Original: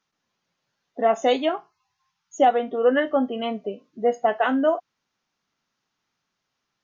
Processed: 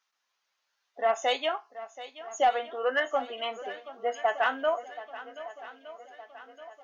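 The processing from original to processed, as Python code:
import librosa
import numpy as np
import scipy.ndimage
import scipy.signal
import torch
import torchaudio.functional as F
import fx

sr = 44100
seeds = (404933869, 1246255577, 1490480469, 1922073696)

y = scipy.signal.sosfilt(scipy.signal.butter(2, 840.0, 'highpass', fs=sr, output='sos'), x)
y = 10.0 ** (-12.5 / 20.0) * np.tanh(y / 10.0 ** (-12.5 / 20.0))
y = fx.echo_swing(y, sr, ms=1215, ratio=1.5, feedback_pct=49, wet_db=-15.5)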